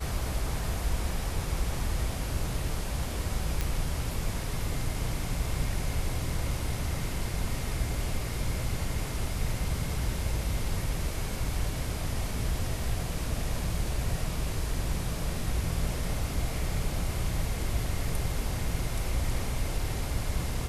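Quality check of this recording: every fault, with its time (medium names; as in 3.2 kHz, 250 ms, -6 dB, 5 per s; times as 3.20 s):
3.61 s: pop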